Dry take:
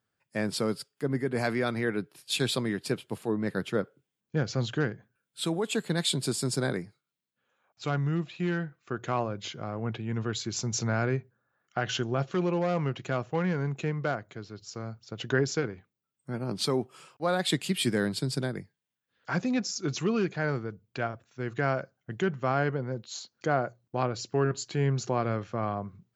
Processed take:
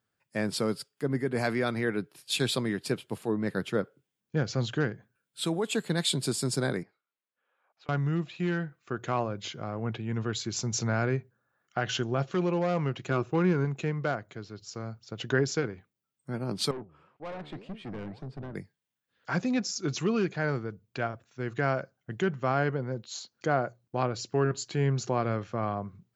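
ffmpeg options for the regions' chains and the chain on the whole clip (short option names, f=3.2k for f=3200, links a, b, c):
-filter_complex "[0:a]asettb=1/sr,asplit=3[a][b][c];[a]atrim=end=6.834[d];[b]atrim=start=6.83:end=7.89,asetpts=PTS-STARTPTS,afade=t=in:d=0.004:c=qsin,afade=t=out:st=1.056:d=0.004:c=qsin,highpass=450,lowpass=2.5k,acompressor=threshold=-54dB:ratio=12:attack=3.2:release=140:knee=1:detection=peak[e];[c]atrim=start=7.886[f];[d][e]acrossfade=d=0.004:c1=hsin:c2=qsin[g];[g][f]acrossfade=d=0.004:c1=qsin:c2=hsin,asettb=1/sr,asplit=3[h][i][j];[h]atrim=end=13.104[k];[i]atrim=start=13.1:end=13.65,asetpts=PTS-STARTPTS,afade=t=in:d=0.004:c=qsin,afade=t=out:st=0.546:d=0.004:c=qsin,equalizer=f=360:t=o:w=0.45:g=11,aecho=1:1:0.8:0.38,atrim=end_sample=24255[l];[j]atrim=start=13.646[m];[k][l]acrossfade=d=0.004:c1=hsin:c2=qsin[n];[n][m]acrossfade=d=0.004:c1=qsin:c2=hsin,asettb=1/sr,asplit=3[o][p][q];[o]atrim=end=16.714[r];[p]atrim=start=16.71:end=18.55,asetpts=PTS-STARTPTS,afade=t=in:d=0.004:c=qsin,afade=t=out:st=1.836:d=0.004:c=qsin,lowpass=1.4k,flanger=delay=4.4:depth=9.4:regen=87:speed=1.9:shape=sinusoidal,aeval=exprs='(tanh(56.2*val(0)+0.3)-tanh(0.3))/56.2':c=same[s];[q]atrim=start=18.546[t];[r][s]acrossfade=d=0.004:c1=hsin:c2=qsin[u];[u][t]acrossfade=d=0.004:c1=qsin:c2=hsin"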